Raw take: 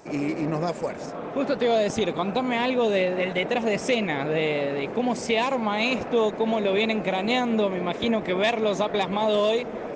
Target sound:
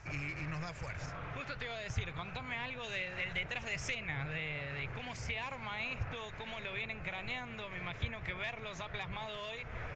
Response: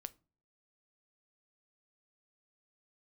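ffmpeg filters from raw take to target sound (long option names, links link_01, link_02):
-filter_complex "[0:a]acrossover=split=1000|2200[link_01][link_02][link_03];[link_01]acompressor=threshold=-32dB:ratio=4[link_04];[link_02]acompressor=threshold=-48dB:ratio=4[link_05];[link_03]acompressor=threshold=-44dB:ratio=4[link_06];[link_04][link_05][link_06]amix=inputs=3:normalize=0,firequalizer=gain_entry='entry(110,0);entry(200,-29);entry(430,-27);entry(1400,-8);entry(2300,-7);entry(3600,-15)':delay=0.05:min_phase=1,asplit=2[link_07][link_08];[1:a]atrim=start_sample=2205,lowshelf=frequency=330:gain=9.5[link_09];[link_08][link_09]afir=irnorm=-1:irlink=0,volume=-0.5dB[link_10];[link_07][link_10]amix=inputs=2:normalize=0,aresample=16000,aresample=44100,asettb=1/sr,asplit=3[link_11][link_12][link_13];[link_11]atrim=end=2.834[link_14];[link_12]atrim=start=2.83:end=3.95,asetpts=PTS-STARTPTS,afade=type=in:duration=0.004:curve=qsin,afade=type=out:start_time=1.116:duration=0.004:curve=qsin,highshelf=frequency=4300:gain=9.5[link_15];[link_13]atrim=start=3.946[link_16];[link_14][link_15]acrossfade=duration=0.004:curve1=hsin:curve2=qsin[link_17];[link_17][link_16]acrossfade=duration=0.004:curve1=qsin:curve2=hsin,volume=5dB"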